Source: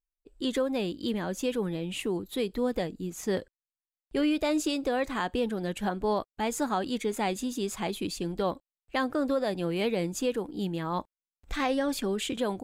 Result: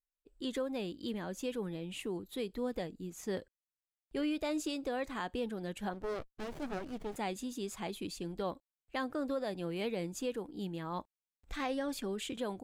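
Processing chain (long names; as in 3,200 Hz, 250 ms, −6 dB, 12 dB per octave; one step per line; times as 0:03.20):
0:05.93–0:07.16: windowed peak hold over 33 samples
level −8 dB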